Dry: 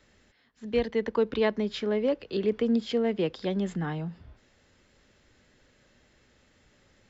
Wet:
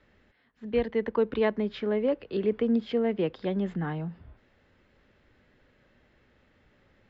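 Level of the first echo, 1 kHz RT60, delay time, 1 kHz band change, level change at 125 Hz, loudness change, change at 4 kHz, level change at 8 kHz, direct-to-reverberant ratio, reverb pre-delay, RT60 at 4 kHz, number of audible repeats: no echo, no reverb, no echo, 0.0 dB, 0.0 dB, 0.0 dB, -5.5 dB, no reading, no reverb, no reverb, no reverb, no echo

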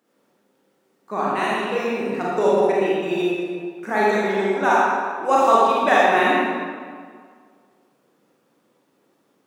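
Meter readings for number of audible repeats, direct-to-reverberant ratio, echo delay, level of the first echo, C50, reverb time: no echo, -7.0 dB, no echo, no echo, -4.0 dB, 1.9 s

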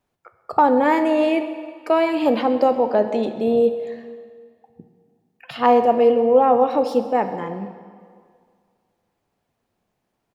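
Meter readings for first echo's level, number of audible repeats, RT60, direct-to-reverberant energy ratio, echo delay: -20.0 dB, 1, 2.0 s, 8.5 dB, 132 ms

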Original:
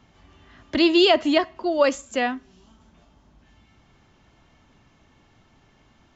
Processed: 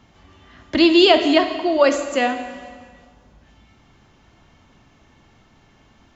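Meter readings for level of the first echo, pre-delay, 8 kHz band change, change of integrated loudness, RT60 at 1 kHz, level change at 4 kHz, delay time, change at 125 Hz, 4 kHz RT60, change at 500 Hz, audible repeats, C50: no echo, 4 ms, no reading, +4.0 dB, 1.7 s, +4.0 dB, no echo, no reading, 1.6 s, +4.0 dB, no echo, 9.0 dB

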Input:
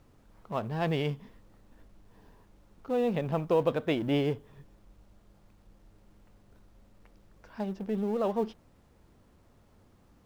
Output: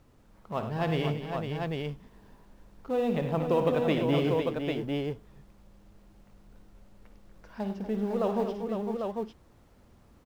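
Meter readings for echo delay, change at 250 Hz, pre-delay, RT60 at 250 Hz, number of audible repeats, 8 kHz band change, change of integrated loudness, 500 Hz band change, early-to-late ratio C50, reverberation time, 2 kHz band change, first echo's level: 55 ms, +2.5 dB, no reverb, no reverb, 5, no reading, +0.5 dB, +2.5 dB, no reverb, no reverb, +2.5 dB, -10.5 dB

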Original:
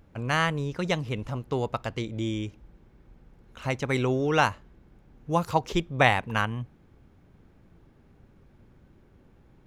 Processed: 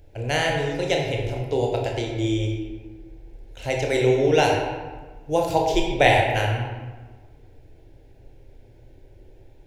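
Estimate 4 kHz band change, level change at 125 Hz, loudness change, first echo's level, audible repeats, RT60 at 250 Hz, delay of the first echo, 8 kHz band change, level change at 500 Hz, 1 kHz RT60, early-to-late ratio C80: +6.0 dB, +4.0 dB, +5.0 dB, no echo, no echo, 1.6 s, no echo, +7.0 dB, +8.5 dB, 1.4 s, 4.0 dB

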